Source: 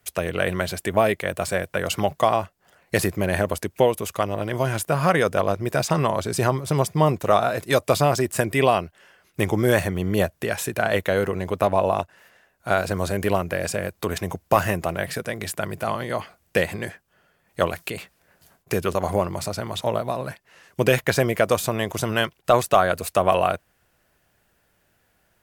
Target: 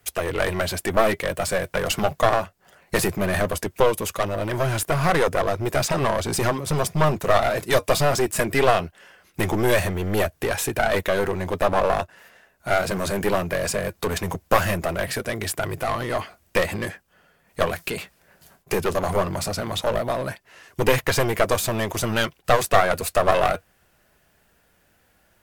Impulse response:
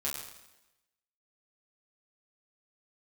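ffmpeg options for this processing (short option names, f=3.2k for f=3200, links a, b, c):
-af "flanger=delay=2.4:depth=2.9:regen=-67:speed=0.19:shape=triangular,aeval=exprs='clip(val(0),-1,0.0316)':c=same,volume=8dB"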